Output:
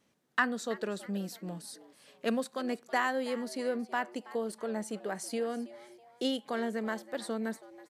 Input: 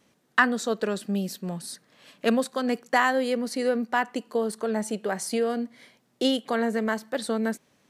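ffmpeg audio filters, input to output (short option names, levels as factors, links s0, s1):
-filter_complex "[0:a]asplit=4[s0][s1][s2][s3];[s1]adelay=325,afreqshift=120,volume=0.126[s4];[s2]adelay=650,afreqshift=240,volume=0.0479[s5];[s3]adelay=975,afreqshift=360,volume=0.0182[s6];[s0][s4][s5][s6]amix=inputs=4:normalize=0,volume=0.398"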